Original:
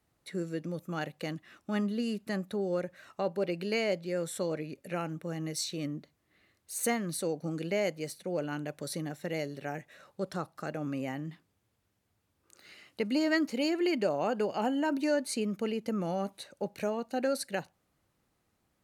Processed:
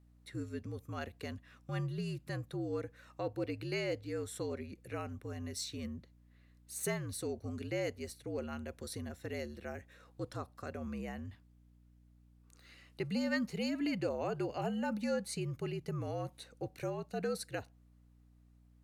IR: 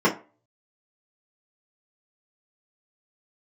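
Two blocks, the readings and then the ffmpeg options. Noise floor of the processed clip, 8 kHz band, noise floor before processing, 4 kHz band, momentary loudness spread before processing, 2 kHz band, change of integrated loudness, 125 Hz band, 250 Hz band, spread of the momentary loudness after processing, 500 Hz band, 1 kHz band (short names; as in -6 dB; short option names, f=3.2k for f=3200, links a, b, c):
-64 dBFS, -6.0 dB, -77 dBFS, -6.5 dB, 10 LU, -6.0 dB, -6.0 dB, -0.5 dB, -6.5 dB, 11 LU, -7.0 dB, -7.5 dB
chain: -af "afreqshift=-63,aeval=exprs='val(0)+0.00158*(sin(2*PI*60*n/s)+sin(2*PI*2*60*n/s)/2+sin(2*PI*3*60*n/s)/3+sin(2*PI*4*60*n/s)/4+sin(2*PI*5*60*n/s)/5)':c=same,volume=-6dB"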